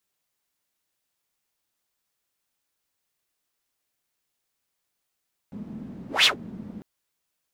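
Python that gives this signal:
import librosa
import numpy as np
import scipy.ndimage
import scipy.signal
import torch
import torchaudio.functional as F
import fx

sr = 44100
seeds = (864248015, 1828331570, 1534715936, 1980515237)

y = fx.whoosh(sr, seeds[0], length_s=1.3, peak_s=0.73, rise_s=0.17, fall_s=0.12, ends_hz=210.0, peak_hz=3600.0, q=4.6, swell_db=23)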